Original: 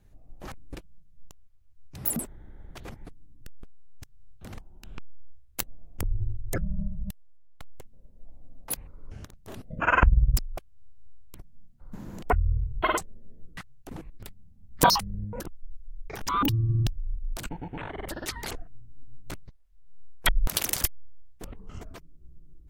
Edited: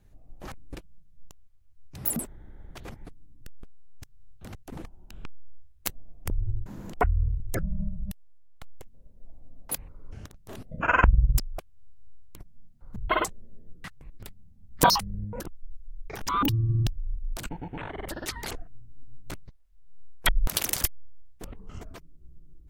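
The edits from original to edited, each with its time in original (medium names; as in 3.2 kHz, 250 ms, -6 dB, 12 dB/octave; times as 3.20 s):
11.95–12.69 s: move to 6.39 s
13.74–14.01 s: move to 4.55 s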